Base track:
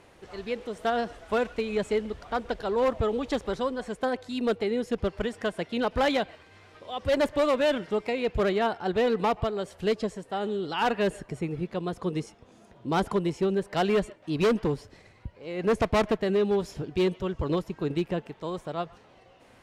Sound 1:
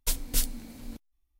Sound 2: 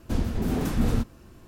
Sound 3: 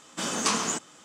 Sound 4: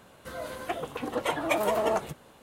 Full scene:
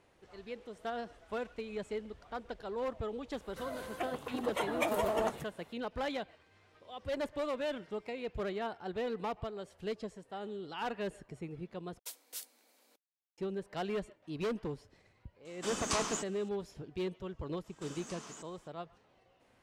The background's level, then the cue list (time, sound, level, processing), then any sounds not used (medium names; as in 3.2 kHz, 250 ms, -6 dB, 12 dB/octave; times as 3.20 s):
base track -12 dB
3.31 s: add 4 -6 dB
11.99 s: replace with 1 -14.5 dB + high-pass 450 Hz 24 dB/octave
15.45 s: add 3 -9 dB + endings held to a fixed fall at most 560 dB/s
17.64 s: add 3 -14 dB + compression 5:1, threshold -32 dBFS
not used: 2